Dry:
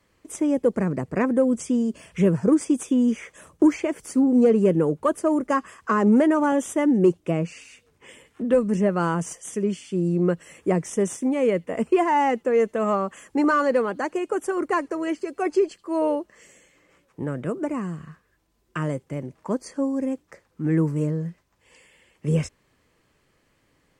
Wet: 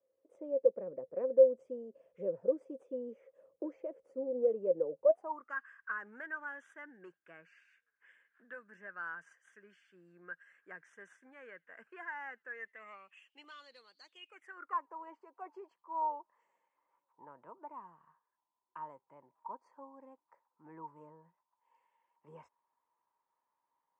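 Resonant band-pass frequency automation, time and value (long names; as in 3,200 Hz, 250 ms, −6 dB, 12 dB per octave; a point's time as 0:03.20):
resonant band-pass, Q 16
0:05.02 530 Hz
0:05.57 1,600 Hz
0:12.47 1,600 Hz
0:13.97 4,600 Hz
0:14.86 940 Hz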